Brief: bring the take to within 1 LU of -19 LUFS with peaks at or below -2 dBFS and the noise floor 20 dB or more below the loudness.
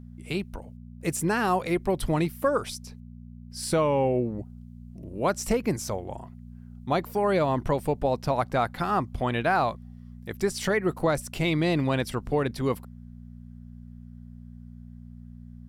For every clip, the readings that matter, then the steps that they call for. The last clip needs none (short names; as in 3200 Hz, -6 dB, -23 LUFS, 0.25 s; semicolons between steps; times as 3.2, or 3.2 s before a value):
hum 60 Hz; harmonics up to 240 Hz; hum level -41 dBFS; loudness -27.0 LUFS; peak -13.5 dBFS; loudness target -19.0 LUFS
-> de-hum 60 Hz, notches 4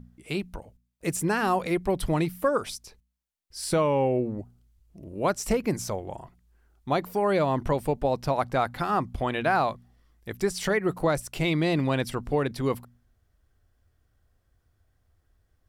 hum none; loudness -27.0 LUFS; peak -13.0 dBFS; loudness target -19.0 LUFS
-> gain +8 dB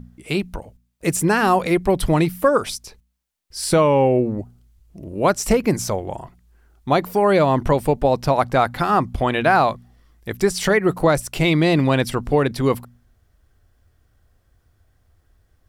loudness -19.0 LUFS; peak -5.0 dBFS; noise floor -63 dBFS